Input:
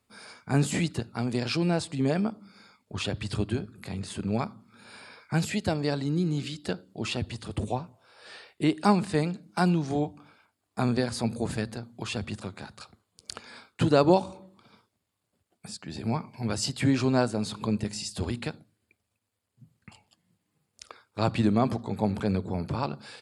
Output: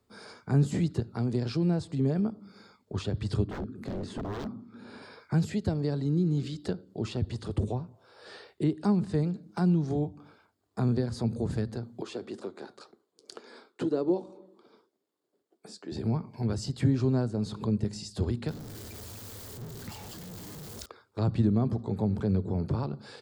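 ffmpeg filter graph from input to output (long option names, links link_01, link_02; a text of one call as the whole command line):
ffmpeg -i in.wav -filter_complex "[0:a]asettb=1/sr,asplit=3[link_01][link_02][link_03];[link_01]atrim=end=3.474[link_04];[link_02]atrim=start=3.47:end=5.02,asetpts=PTS-STARTPTS,afade=type=in:duration=0.004:curve=qsin,afade=type=out:start_time=1.546:duration=0.004:curve=qsin,lowpass=frequency=3600:poles=1,equalizer=frequency=260:width=2.3:gain=10.5,aeval=exprs='0.0316*(abs(mod(val(0)/0.0316+3,4)-2)-1)':channel_layout=same[link_05];[link_03]atrim=start=5.016[link_06];[link_04][link_05]acrossfade=duration=0.004:curve1=hsin:curve2=qsin[link_07];[link_07][link_06]acrossfade=duration=0.004:curve1=qsin:curve2=hsin,asettb=1/sr,asplit=3[link_08][link_09][link_10];[link_08]atrim=end=12.014[link_11];[link_09]atrim=start=12.01:end=15.92,asetpts=PTS-STARTPTS,afade=type=in:duration=0.004:curve=qsin,afade=type=out:start_time=3.906:duration=0.004:curve=qsin,flanger=delay=4.1:depth=3.5:regen=-76:speed=2:shape=sinusoidal,highpass=frequency=330:width_type=q:width=1.9[link_12];[link_10]atrim=start=15.916[link_13];[link_11][link_12]acrossfade=duration=0.004:curve1=hsin:curve2=qsin[link_14];[link_14][link_13]acrossfade=duration=0.004:curve1=qsin:curve2=hsin,asettb=1/sr,asplit=3[link_15][link_16][link_17];[link_15]atrim=end=18.484[link_18];[link_16]atrim=start=18.48:end=20.86,asetpts=PTS-STARTPTS,afade=type=in:duration=0.004:curve=qsin,afade=type=out:start_time=2.376:duration=0.004:curve=qsin,aeval=exprs='val(0)+0.5*0.0106*sgn(val(0))':channel_layout=same,highshelf=frequency=3800:gain=8[link_19];[link_17]atrim=start=20.856[link_20];[link_18][link_19]acrossfade=duration=0.004:curve1=hsin:curve2=qsin[link_21];[link_21][link_20]acrossfade=duration=0.004:curve1=qsin:curve2=hsin,lowshelf=frequency=170:gain=4.5,acrossover=split=210[link_22][link_23];[link_23]acompressor=threshold=-39dB:ratio=2.5[link_24];[link_22][link_24]amix=inputs=2:normalize=0,equalizer=frequency=400:width_type=o:width=0.67:gain=7,equalizer=frequency=2500:width_type=o:width=0.67:gain=-7,equalizer=frequency=10000:width_type=o:width=0.67:gain=-8" out.wav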